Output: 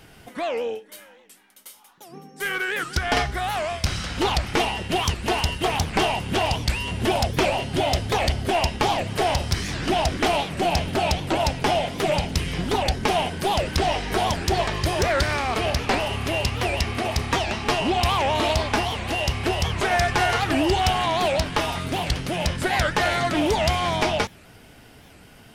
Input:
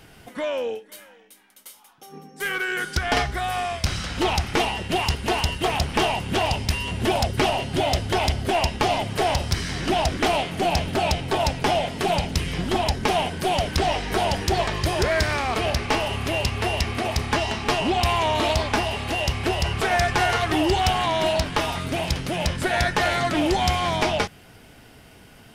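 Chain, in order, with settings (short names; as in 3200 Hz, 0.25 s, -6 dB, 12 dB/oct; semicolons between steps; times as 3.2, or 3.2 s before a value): record warp 78 rpm, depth 250 cents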